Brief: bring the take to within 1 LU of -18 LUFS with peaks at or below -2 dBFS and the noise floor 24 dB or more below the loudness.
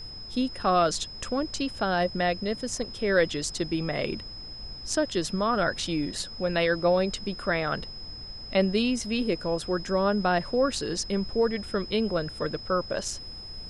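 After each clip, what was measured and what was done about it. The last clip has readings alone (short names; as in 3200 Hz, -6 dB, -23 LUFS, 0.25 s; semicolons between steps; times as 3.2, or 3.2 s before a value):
steady tone 5100 Hz; tone level -40 dBFS; noise floor -41 dBFS; noise floor target -52 dBFS; loudness -27.5 LUFS; peak -9.5 dBFS; loudness target -18.0 LUFS
-> notch 5100 Hz, Q 30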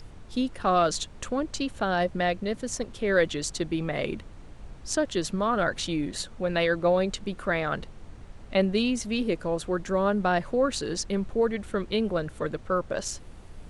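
steady tone none; noise floor -46 dBFS; noise floor target -52 dBFS
-> noise print and reduce 6 dB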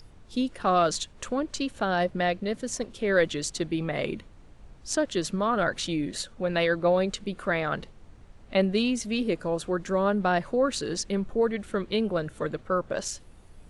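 noise floor -51 dBFS; noise floor target -52 dBFS
-> noise print and reduce 6 dB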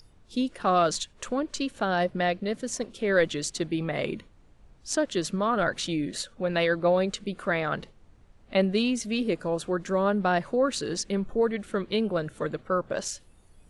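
noise floor -57 dBFS; loudness -27.5 LUFS; peak -9.5 dBFS; loudness target -18.0 LUFS
-> gain +9.5 dB; limiter -2 dBFS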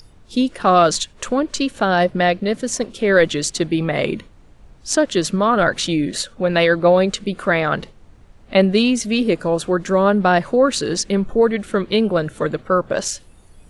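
loudness -18.5 LUFS; peak -2.0 dBFS; noise floor -48 dBFS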